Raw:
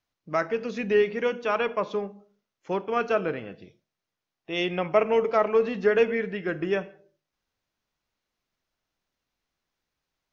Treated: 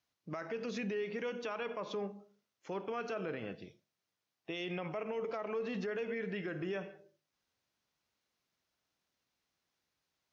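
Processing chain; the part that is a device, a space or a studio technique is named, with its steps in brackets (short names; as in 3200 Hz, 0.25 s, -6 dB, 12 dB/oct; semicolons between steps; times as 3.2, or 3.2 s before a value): broadcast voice chain (HPF 76 Hz; de-esser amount 75%; compressor 4:1, threshold -27 dBFS, peak gain reduction 10.5 dB; bell 5300 Hz +3 dB 1.7 oct; limiter -28 dBFS, peak gain reduction 11.5 dB); gain -2.5 dB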